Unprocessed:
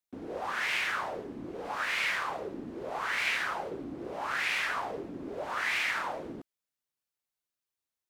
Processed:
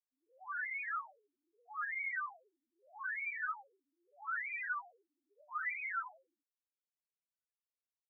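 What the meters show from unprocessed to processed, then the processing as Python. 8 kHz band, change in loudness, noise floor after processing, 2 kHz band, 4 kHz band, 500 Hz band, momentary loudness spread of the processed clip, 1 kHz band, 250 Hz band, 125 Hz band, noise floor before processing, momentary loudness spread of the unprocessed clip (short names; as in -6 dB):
under -35 dB, -7.5 dB, under -85 dBFS, -7.5 dB, under -40 dB, -30.5 dB, 10 LU, -8.0 dB, under -40 dB, under -40 dB, under -85 dBFS, 12 LU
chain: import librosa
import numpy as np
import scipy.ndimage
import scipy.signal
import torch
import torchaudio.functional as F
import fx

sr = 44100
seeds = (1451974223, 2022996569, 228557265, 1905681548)

y = fx.spec_topn(x, sr, count=1)
y = fx.ladder_highpass(y, sr, hz=1200.0, resonance_pct=55)
y = y * 10.0 ** (11.5 / 20.0)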